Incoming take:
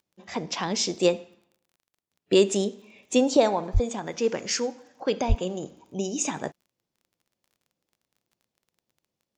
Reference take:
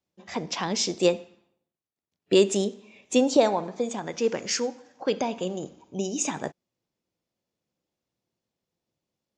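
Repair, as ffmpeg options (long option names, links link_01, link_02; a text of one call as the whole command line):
ffmpeg -i in.wav -filter_complex "[0:a]adeclick=threshold=4,asplit=3[link_01][link_02][link_03];[link_01]afade=type=out:start_time=3.73:duration=0.02[link_04];[link_02]highpass=frequency=140:width=0.5412,highpass=frequency=140:width=1.3066,afade=type=in:start_time=3.73:duration=0.02,afade=type=out:start_time=3.85:duration=0.02[link_05];[link_03]afade=type=in:start_time=3.85:duration=0.02[link_06];[link_04][link_05][link_06]amix=inputs=3:normalize=0,asplit=3[link_07][link_08][link_09];[link_07]afade=type=out:start_time=5.28:duration=0.02[link_10];[link_08]highpass=frequency=140:width=0.5412,highpass=frequency=140:width=1.3066,afade=type=in:start_time=5.28:duration=0.02,afade=type=out:start_time=5.4:duration=0.02[link_11];[link_09]afade=type=in:start_time=5.4:duration=0.02[link_12];[link_10][link_11][link_12]amix=inputs=3:normalize=0" out.wav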